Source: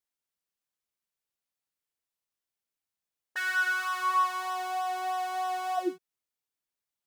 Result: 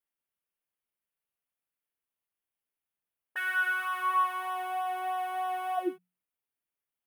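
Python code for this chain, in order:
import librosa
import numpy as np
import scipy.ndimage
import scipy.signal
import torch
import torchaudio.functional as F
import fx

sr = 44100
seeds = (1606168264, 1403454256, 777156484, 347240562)

y = fx.band_shelf(x, sr, hz=5500.0, db=-15.5, octaves=1.2)
y = fx.hum_notches(y, sr, base_hz=60, count=3)
y = y * librosa.db_to_amplitude(-1.0)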